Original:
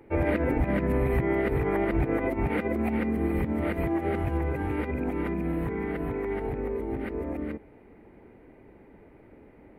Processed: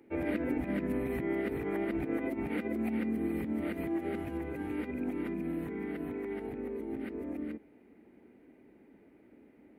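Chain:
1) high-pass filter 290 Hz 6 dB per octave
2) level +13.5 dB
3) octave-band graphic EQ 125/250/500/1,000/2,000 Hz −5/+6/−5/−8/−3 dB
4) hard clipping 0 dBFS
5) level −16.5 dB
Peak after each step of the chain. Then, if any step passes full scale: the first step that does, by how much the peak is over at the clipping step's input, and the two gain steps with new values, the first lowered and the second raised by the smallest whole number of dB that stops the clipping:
−17.0, −3.5, −4.0, −4.0, −20.5 dBFS
no step passes full scale

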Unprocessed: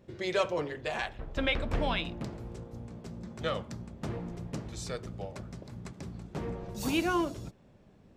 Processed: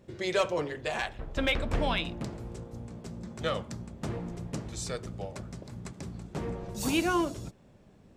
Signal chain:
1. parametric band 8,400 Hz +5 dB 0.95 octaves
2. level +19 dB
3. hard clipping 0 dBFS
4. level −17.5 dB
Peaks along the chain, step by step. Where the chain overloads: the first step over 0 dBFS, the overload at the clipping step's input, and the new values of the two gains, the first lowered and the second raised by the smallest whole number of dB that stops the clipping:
−15.5, +3.5, 0.0, −17.5 dBFS
step 2, 3.5 dB
step 2 +15 dB, step 4 −13.5 dB

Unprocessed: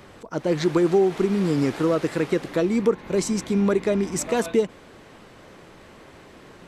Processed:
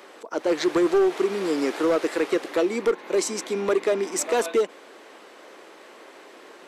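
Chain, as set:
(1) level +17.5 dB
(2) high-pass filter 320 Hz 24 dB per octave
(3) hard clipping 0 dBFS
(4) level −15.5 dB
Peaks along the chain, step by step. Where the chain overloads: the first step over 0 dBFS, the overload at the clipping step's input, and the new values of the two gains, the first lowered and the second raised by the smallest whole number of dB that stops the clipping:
+8.0, +7.0, 0.0, −15.5 dBFS
step 1, 7.0 dB
step 1 +10.5 dB, step 4 −8.5 dB

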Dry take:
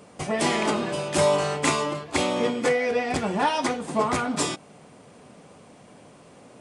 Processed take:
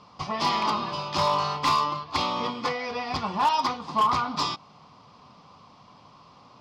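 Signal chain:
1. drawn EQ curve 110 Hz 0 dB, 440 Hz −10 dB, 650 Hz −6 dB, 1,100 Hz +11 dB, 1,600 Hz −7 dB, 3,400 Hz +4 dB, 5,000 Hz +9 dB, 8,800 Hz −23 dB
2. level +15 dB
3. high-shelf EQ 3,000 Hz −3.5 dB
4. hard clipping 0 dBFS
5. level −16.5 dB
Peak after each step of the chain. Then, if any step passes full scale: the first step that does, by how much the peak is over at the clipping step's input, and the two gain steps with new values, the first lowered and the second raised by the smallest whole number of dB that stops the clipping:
−7.0, +8.0, +7.0, 0.0, −16.5 dBFS
step 2, 7.0 dB
step 2 +8 dB, step 5 −9.5 dB

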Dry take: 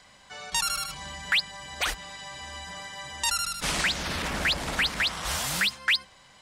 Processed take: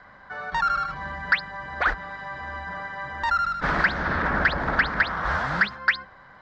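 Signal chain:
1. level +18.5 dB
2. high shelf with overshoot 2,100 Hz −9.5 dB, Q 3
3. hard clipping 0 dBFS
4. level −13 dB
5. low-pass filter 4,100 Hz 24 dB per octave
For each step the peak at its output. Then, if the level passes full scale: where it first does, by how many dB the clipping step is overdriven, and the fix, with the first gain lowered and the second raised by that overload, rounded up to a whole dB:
+3.5, +8.5, 0.0, −13.0, −11.5 dBFS
step 1, 8.5 dB
step 1 +9.5 dB, step 4 −4 dB

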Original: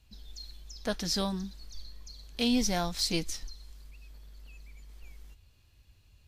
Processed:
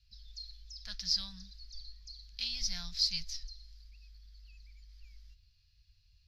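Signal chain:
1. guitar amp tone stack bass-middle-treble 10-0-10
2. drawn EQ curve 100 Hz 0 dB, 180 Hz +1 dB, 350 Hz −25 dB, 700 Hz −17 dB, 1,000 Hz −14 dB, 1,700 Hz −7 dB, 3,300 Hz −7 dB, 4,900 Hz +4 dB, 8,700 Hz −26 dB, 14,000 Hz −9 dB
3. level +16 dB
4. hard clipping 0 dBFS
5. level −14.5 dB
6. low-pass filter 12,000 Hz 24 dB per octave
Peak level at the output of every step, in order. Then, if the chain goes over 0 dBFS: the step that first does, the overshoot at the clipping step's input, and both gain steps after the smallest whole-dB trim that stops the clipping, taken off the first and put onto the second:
−18.5, −19.0, −3.0, −3.0, −17.5, −17.5 dBFS
no step passes full scale

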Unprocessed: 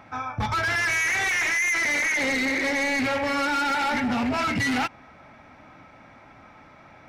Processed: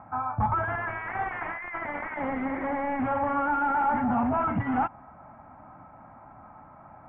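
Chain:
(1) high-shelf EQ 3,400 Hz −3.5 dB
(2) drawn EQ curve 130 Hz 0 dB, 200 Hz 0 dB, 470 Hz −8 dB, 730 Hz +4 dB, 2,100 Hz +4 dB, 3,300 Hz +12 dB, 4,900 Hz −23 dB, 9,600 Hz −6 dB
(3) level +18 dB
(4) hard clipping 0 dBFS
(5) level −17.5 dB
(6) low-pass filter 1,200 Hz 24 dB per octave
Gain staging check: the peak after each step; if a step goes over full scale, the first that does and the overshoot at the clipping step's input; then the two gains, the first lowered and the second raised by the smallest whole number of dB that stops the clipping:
−22.0, −12.5, +5.5, 0.0, −17.5, −16.5 dBFS
step 3, 5.5 dB
step 3 +12 dB, step 5 −11.5 dB

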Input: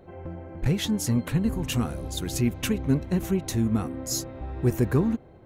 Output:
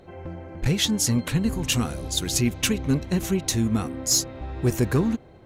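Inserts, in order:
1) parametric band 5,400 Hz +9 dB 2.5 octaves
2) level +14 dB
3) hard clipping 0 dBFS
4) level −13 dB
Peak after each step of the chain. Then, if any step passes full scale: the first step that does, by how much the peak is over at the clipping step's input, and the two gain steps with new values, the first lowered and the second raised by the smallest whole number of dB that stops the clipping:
−8.5, +5.5, 0.0, −13.0 dBFS
step 2, 5.5 dB
step 2 +8 dB, step 4 −7 dB

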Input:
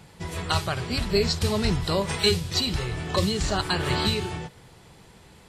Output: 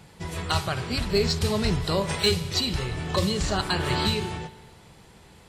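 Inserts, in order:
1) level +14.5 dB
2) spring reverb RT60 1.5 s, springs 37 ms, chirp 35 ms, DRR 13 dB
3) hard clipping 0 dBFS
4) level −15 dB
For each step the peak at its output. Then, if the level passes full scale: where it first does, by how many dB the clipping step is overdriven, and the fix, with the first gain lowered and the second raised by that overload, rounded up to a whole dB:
+3.0, +3.5, 0.0, −15.0 dBFS
step 1, 3.5 dB
step 1 +10.5 dB, step 4 −11 dB

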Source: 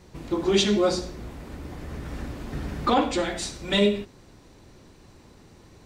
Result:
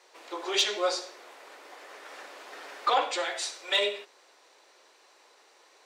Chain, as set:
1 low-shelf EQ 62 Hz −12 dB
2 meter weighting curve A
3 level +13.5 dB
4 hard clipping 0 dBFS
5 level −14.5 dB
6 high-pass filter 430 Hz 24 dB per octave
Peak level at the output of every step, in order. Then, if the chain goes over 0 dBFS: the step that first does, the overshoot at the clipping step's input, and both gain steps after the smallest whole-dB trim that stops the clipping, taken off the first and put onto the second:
−9.5, −9.0, +4.5, 0.0, −14.5, −12.5 dBFS
step 3, 4.5 dB
step 3 +8.5 dB, step 5 −9.5 dB

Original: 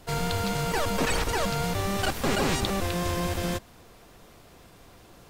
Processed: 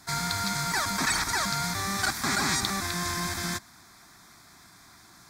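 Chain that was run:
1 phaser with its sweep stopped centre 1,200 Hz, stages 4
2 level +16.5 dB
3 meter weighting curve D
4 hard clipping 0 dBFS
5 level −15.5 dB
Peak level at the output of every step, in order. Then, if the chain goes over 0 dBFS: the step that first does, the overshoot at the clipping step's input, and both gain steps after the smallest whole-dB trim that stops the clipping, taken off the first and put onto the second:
−16.0, +0.5, +5.5, 0.0, −15.5 dBFS
step 2, 5.5 dB
step 2 +10.5 dB, step 5 −9.5 dB

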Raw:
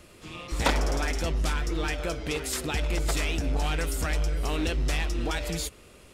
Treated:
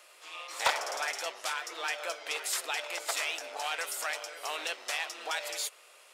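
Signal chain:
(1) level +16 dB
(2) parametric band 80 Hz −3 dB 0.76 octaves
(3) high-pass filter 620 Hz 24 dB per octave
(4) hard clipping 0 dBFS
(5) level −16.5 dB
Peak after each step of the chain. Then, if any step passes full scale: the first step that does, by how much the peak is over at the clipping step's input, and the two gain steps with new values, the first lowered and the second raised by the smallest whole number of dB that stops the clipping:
+1.0, +1.0, +5.5, 0.0, −16.5 dBFS
step 1, 5.5 dB
step 1 +10 dB, step 5 −10.5 dB

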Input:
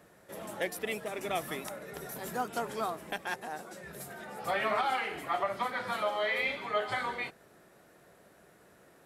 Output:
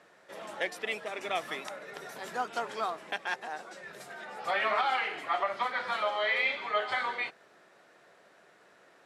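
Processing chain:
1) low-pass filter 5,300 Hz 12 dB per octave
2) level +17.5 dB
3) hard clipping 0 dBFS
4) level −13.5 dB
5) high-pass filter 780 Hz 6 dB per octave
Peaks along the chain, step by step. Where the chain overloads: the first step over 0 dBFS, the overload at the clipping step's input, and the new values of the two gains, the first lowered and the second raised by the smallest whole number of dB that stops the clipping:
−20.0, −2.5, −2.5, −16.0, −17.5 dBFS
no step passes full scale

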